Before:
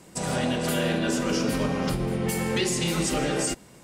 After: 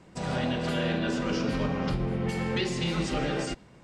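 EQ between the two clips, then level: bell 360 Hz -4.5 dB 2.7 oct; dynamic EQ 4200 Hz, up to +4 dB, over -42 dBFS, Q 1.2; tape spacing loss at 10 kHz 23 dB; +1.5 dB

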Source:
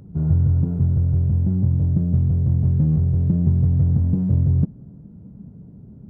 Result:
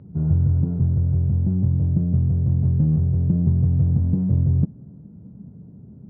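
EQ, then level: HPF 68 Hz; air absorption 450 m; 0.0 dB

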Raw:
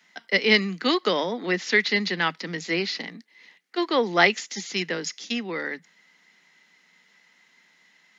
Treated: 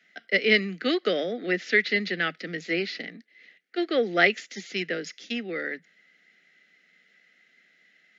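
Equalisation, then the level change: Butterworth band-stop 970 Hz, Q 1.5; tone controls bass -5 dB, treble -12 dB; 0.0 dB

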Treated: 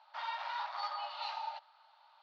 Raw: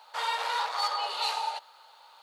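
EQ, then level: brick-wall FIR high-pass 560 Hz; synth low-pass 5700 Hz, resonance Q 3.2; air absorption 370 m; -7.0 dB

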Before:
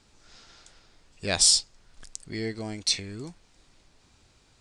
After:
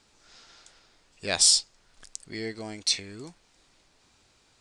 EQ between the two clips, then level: low shelf 210 Hz -9 dB; 0.0 dB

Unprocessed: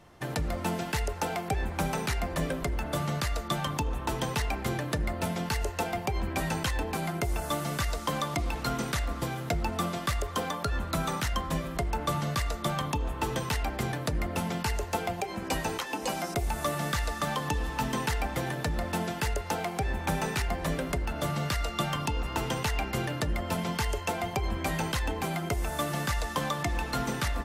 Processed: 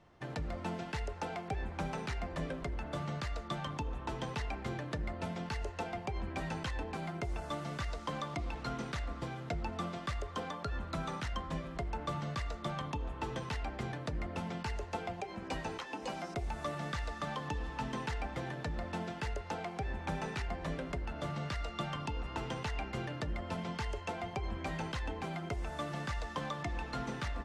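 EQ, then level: air absorption 93 m; -7.5 dB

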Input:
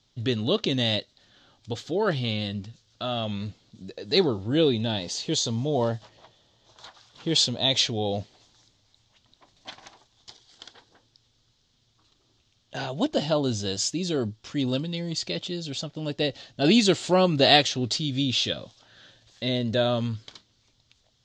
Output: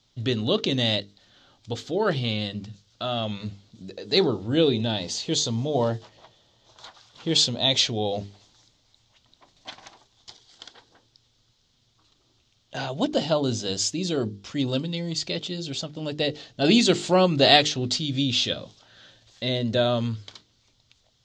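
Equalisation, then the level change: notches 50/100/150/200/250/300/350/400/450 Hz; notch 1700 Hz, Q 28; +1.5 dB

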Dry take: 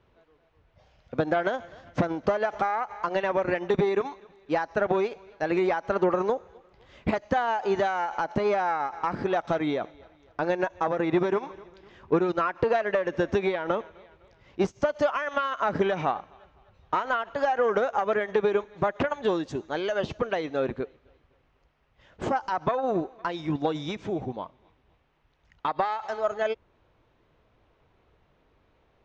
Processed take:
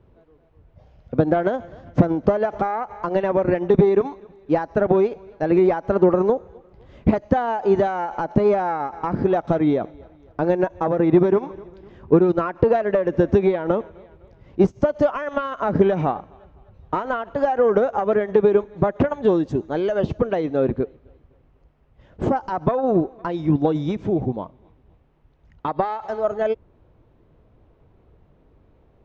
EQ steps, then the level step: tilt shelf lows +8.5 dB, about 780 Hz; +3.5 dB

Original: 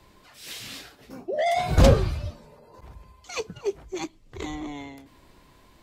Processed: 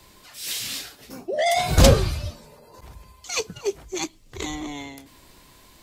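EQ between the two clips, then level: high shelf 3400 Hz +12 dB; +1.5 dB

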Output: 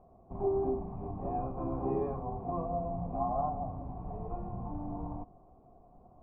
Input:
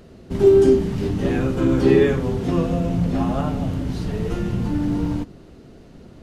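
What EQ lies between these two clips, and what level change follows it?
vocal tract filter a; LPF 3400 Hz; tilt -3 dB/oct; +1.5 dB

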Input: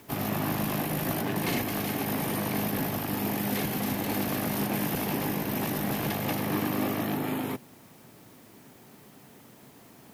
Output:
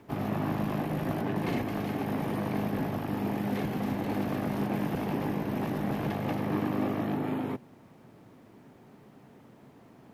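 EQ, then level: LPF 1200 Hz 6 dB/oct; 0.0 dB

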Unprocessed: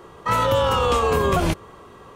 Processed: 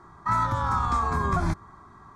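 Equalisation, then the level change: air absorption 79 m; fixed phaser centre 1200 Hz, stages 4; -2.0 dB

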